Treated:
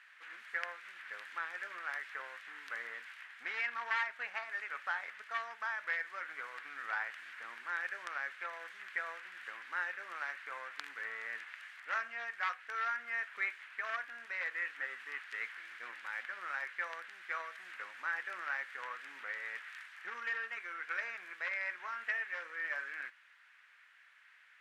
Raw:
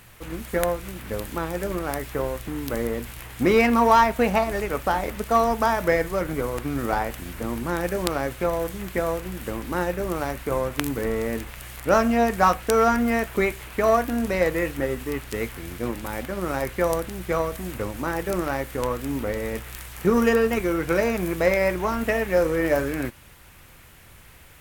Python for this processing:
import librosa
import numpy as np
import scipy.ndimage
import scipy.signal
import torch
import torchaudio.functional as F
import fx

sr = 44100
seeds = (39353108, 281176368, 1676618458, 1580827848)

y = np.minimum(x, 2.0 * 10.0 ** (-15.5 / 20.0) - x)
y = fx.rider(y, sr, range_db=3, speed_s=0.5)
y = fx.ladder_bandpass(y, sr, hz=1900.0, resonance_pct=55)